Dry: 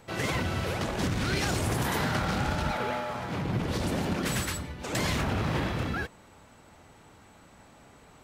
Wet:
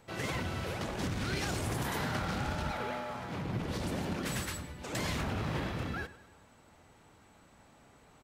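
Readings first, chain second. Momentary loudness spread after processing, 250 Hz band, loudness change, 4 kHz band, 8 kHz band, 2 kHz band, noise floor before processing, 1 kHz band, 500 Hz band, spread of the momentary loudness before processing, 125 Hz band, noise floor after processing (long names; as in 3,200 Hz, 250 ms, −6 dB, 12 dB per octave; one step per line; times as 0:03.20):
5 LU, −6.0 dB, −6.0 dB, −6.0 dB, −6.0 dB, −6.0 dB, −55 dBFS, −6.0 dB, −6.0 dB, 5 LU, −6.0 dB, −61 dBFS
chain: repeating echo 101 ms, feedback 50%, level −17 dB
level −6 dB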